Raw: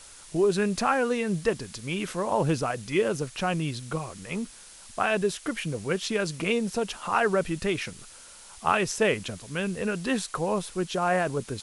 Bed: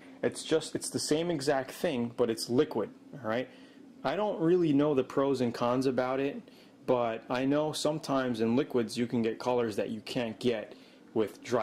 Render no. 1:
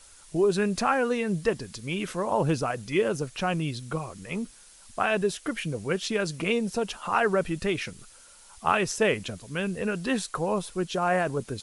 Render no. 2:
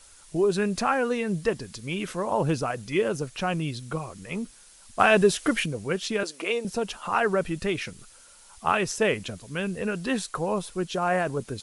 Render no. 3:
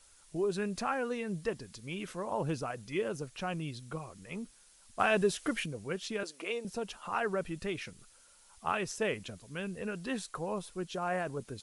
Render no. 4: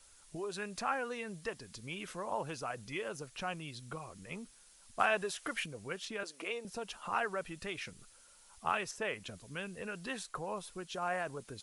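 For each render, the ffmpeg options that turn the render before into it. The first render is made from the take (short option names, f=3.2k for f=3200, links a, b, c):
-af "afftdn=nr=6:nf=-48"
-filter_complex "[0:a]asettb=1/sr,asplit=3[a][b][c];[a]atrim=end=4.994[d];[b]atrim=start=4.99:end=5.66,asetpts=PTS-STARTPTS,afade=t=in:d=0.004:c=qsin,afade=t=out:st=0.666:d=0.004:c=qsin,acontrast=77[e];[c]atrim=start=5.656[f];[d][e]acrossfade=d=0.004:c1=hsin:c2=qsin[g];[g][f]acrossfade=d=0.004:c1=qsin:c2=hsin,asettb=1/sr,asplit=3[h][i][j];[h]atrim=end=6.234[k];[i]atrim=start=6.23:end=6.65,asetpts=PTS-STARTPTS,afade=t=in:d=0.004:c=qsin,afade=t=out:st=0.416:d=0.004:c=qsin,highpass=f=320:w=0.5412,highpass=f=320:w=1.3066[l];[j]atrim=start=6.646[m];[k][l]acrossfade=d=0.004:c1=hsin:c2=qsin[n];[n][m]acrossfade=d=0.004:c1=qsin:c2=hsin"
-af "volume=-9dB"
-filter_complex "[0:a]acrossover=split=600|2300[a][b][c];[a]acompressor=threshold=-44dB:ratio=6[d];[c]alimiter=level_in=7dB:limit=-24dB:level=0:latency=1:release=427,volume=-7dB[e];[d][b][e]amix=inputs=3:normalize=0"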